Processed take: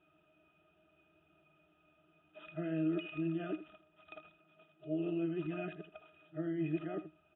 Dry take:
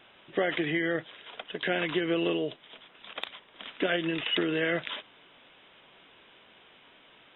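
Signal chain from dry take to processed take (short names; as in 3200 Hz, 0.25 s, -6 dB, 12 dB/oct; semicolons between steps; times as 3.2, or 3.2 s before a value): whole clip reversed; octave resonator D#, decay 0.11 s; echo 80 ms -13.5 dB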